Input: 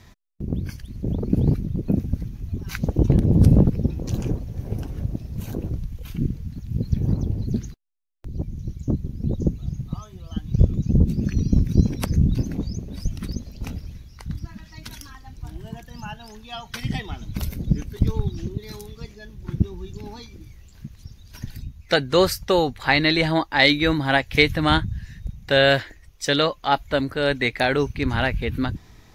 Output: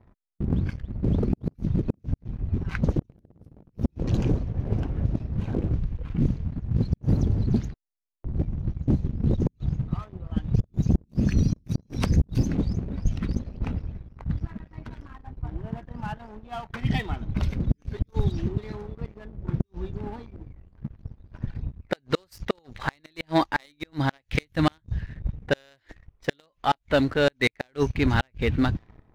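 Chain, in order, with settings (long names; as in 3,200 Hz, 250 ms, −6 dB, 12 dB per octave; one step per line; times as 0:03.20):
low-pass that shuts in the quiet parts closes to 840 Hz, open at −15.5 dBFS
gate with flip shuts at −9 dBFS, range −34 dB
leveller curve on the samples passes 2
level −5 dB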